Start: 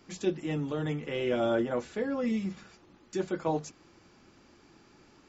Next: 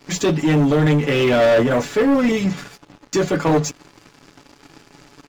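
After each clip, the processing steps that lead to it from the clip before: comb 7 ms, depth 74%; sample leveller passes 3; gain +6 dB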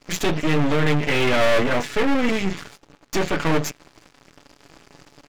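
half-wave rectifier; dynamic EQ 2300 Hz, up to +6 dB, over -40 dBFS, Q 0.88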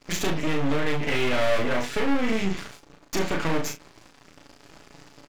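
compressor 2.5:1, threshold -21 dBFS, peak gain reduction 6 dB; on a send: early reflections 36 ms -4.5 dB, 69 ms -14 dB; on the sum: gain -2 dB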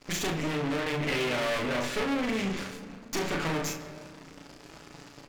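tube stage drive 19 dB, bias 0.6; on a send at -9 dB: reverb RT60 2.3 s, pre-delay 5 ms; on the sum: gain +4.5 dB

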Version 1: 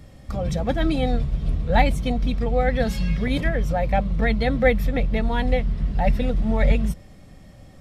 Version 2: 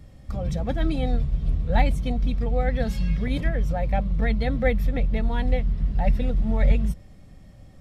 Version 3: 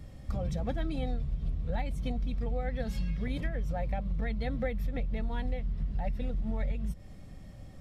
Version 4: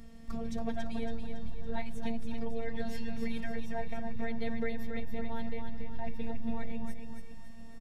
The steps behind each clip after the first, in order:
low shelf 170 Hz +6.5 dB; gain -6 dB
compressor 10:1, threshold -28 dBFS, peak gain reduction 15.5 dB
robotiser 229 Hz; feedback echo 0.279 s, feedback 46%, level -6 dB; gain +1 dB

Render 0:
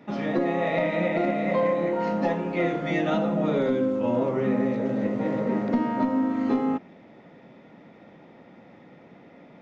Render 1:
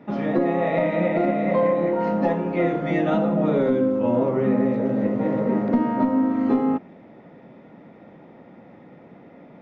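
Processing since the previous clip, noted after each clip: high shelf 2600 Hz -12 dB; gain +4 dB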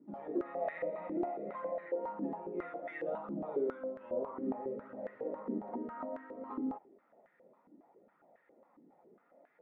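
flange 0.61 Hz, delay 0.6 ms, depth 5.1 ms, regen -38%; stepped band-pass 7.3 Hz 310–1700 Hz; gain -4.5 dB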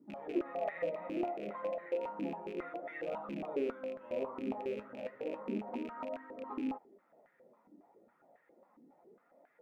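rattling part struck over -49 dBFS, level -40 dBFS; flange 0.32 Hz, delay 0.8 ms, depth 9.4 ms, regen +68%; gain +4 dB

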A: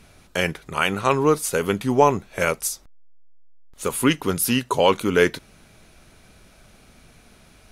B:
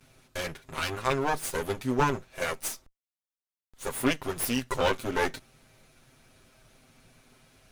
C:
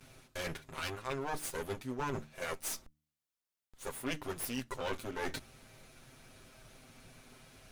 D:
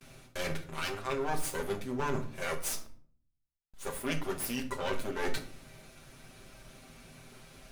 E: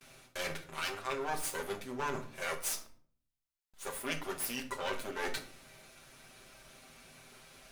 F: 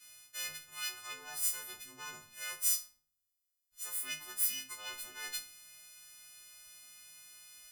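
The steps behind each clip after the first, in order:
minimum comb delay 7.7 ms; gain -6 dB
de-hum 75.34 Hz, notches 4; reverse; compressor 4:1, threshold -39 dBFS, peak gain reduction 16 dB; reverse; gain +2 dB
gate with hold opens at -50 dBFS; shoebox room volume 640 m³, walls furnished, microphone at 1.2 m; gain +2.5 dB
low shelf 350 Hz -10.5 dB
frequency quantiser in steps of 3 st; passive tone stack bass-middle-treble 5-5-5

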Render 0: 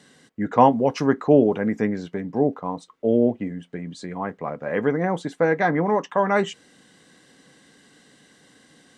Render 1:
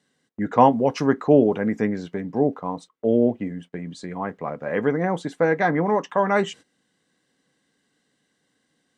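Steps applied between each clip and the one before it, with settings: gate -41 dBFS, range -16 dB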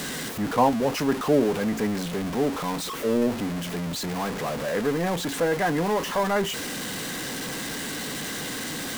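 zero-crossing step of -19.5 dBFS; gain -6.5 dB

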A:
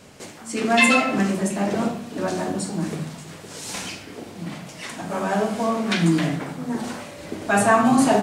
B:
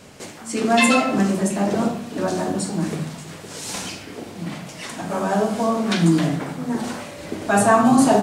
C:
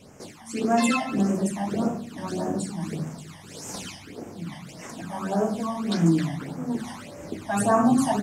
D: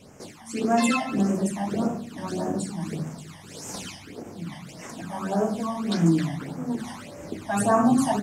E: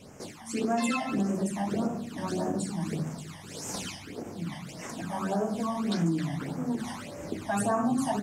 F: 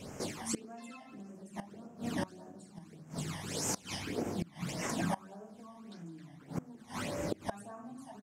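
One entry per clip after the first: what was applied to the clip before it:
dynamic EQ 2200 Hz, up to -6 dB, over -38 dBFS, Q 1.3; gain +2.5 dB
phaser stages 12, 1.7 Hz, lowest notch 420–4000 Hz; gain -4.5 dB
ending taper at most 280 dB/s
compressor 2.5:1, threshold -27 dBFS, peak gain reduction 8.5 dB
speakerphone echo 0.17 s, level -14 dB; flipped gate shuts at -25 dBFS, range -24 dB; gain +3 dB

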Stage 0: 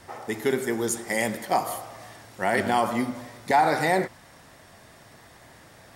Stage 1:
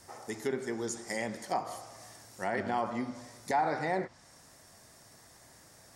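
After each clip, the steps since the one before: treble ducked by the level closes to 2600 Hz, closed at -20 dBFS; resonant high shelf 4300 Hz +8 dB, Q 1.5; gain -8.5 dB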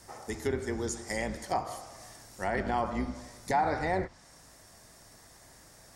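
octaver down 2 oct, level -3 dB; gain +1.5 dB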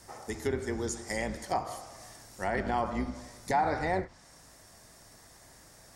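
ending taper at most 250 dB/s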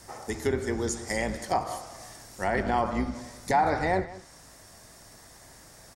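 echo 0.186 s -18 dB; gain +4 dB

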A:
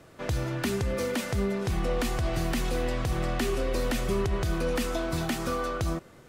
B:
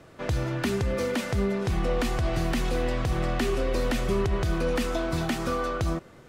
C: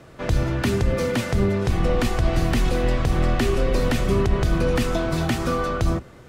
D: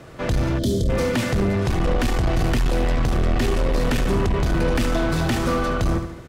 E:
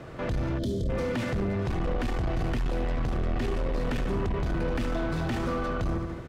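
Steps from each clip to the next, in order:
high shelf 7500 Hz -7.5 dB; gain +2 dB
octaver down 1 oct, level -1 dB; gain +4 dB
feedback echo 72 ms, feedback 46%, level -10.5 dB; soft clip -19.5 dBFS, distortion -11 dB; spectral gain 0.59–0.89, 680–3000 Hz -21 dB; gain +4 dB
high shelf 4800 Hz -11.5 dB; limiter -24 dBFS, peak gain reduction 9 dB

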